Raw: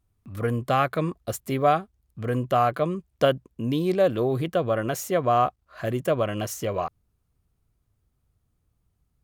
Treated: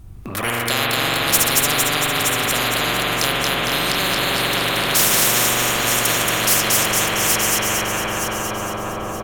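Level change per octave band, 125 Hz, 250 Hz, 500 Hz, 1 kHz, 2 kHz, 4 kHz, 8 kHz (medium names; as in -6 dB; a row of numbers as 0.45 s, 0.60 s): +1.0 dB, +2.5 dB, -0.5 dB, +4.0 dB, +17.5 dB, +21.5 dB, +24.0 dB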